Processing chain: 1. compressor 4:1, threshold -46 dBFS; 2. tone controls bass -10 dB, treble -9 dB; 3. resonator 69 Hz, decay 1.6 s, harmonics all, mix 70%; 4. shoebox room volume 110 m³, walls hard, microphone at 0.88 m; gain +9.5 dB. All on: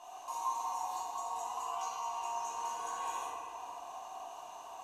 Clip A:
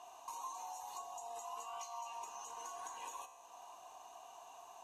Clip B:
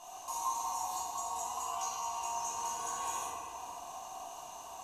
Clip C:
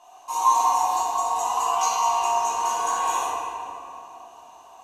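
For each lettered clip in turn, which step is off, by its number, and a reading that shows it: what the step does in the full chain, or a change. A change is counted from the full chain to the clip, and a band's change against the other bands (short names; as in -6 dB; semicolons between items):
4, echo-to-direct 7.5 dB to none; 2, 8 kHz band +7.0 dB; 1, mean gain reduction 10.0 dB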